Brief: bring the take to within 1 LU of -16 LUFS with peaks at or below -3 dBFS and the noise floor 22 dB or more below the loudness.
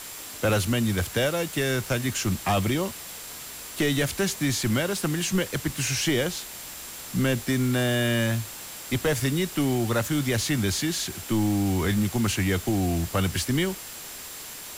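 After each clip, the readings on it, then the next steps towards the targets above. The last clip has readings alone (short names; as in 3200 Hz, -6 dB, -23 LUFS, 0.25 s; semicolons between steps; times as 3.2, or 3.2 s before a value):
steady tone 7400 Hz; tone level -47 dBFS; noise floor -40 dBFS; noise floor target -48 dBFS; loudness -25.5 LUFS; peak -14.5 dBFS; loudness target -16.0 LUFS
-> notch 7400 Hz, Q 30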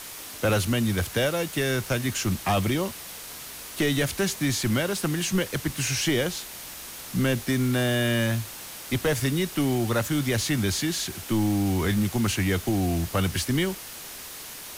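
steady tone none; noise floor -40 dBFS; noise floor target -48 dBFS
-> denoiser 8 dB, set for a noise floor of -40 dBFS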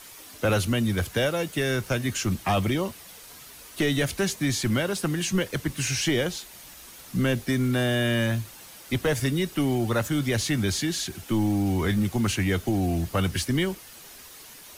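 noise floor -46 dBFS; noise floor target -48 dBFS
-> denoiser 6 dB, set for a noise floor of -46 dBFS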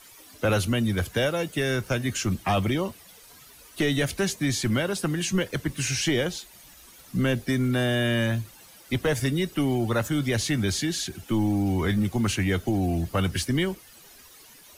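noise floor -51 dBFS; loudness -26.0 LUFS; peak -15.5 dBFS; loudness target -16.0 LUFS
-> gain +10 dB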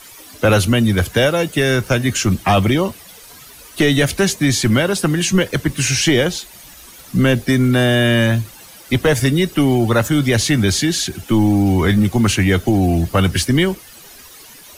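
loudness -16.0 LUFS; peak -5.5 dBFS; noise floor -41 dBFS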